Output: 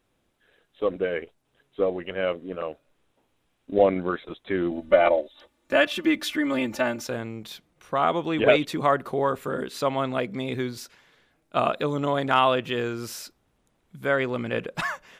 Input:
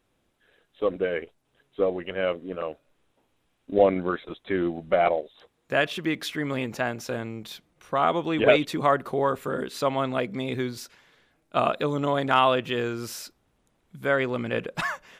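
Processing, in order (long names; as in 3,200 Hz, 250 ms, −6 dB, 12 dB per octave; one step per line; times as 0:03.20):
0:04.71–0:07.07: comb filter 3.4 ms, depth 98%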